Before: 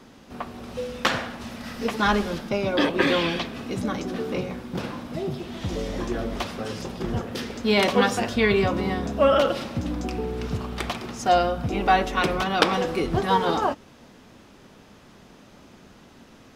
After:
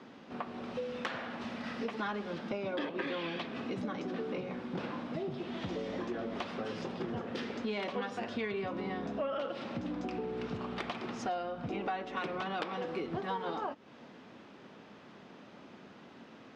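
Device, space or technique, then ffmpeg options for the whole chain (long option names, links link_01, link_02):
AM radio: -af "highpass=170,lowpass=3500,acompressor=threshold=-32dB:ratio=5,asoftclip=type=tanh:threshold=-20dB,volume=-2dB"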